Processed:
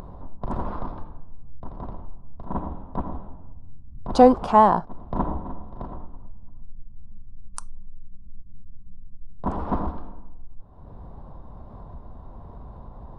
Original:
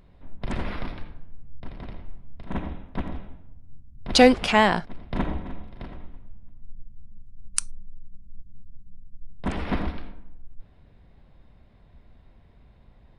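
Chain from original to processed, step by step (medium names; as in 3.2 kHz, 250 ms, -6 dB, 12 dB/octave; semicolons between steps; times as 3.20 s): resonant high shelf 1.5 kHz -13 dB, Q 3; upward compressor, threshold -27 dBFS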